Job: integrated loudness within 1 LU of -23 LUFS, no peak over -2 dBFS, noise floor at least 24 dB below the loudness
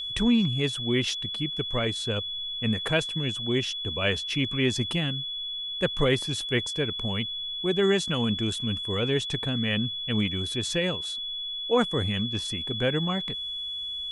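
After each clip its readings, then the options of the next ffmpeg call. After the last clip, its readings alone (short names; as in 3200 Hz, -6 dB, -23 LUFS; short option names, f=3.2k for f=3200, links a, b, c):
steady tone 3400 Hz; tone level -31 dBFS; loudness -27.0 LUFS; peak -11.5 dBFS; loudness target -23.0 LUFS
-> -af "bandreject=f=3.4k:w=30"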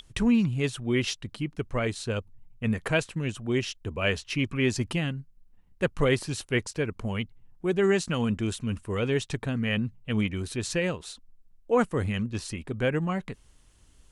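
steady tone none; loudness -28.5 LUFS; peak -11.5 dBFS; loudness target -23.0 LUFS
-> -af "volume=5.5dB"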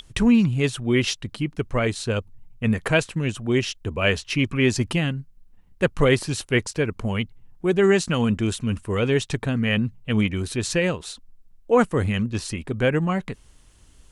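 loudness -23.0 LUFS; peak -6.0 dBFS; noise floor -53 dBFS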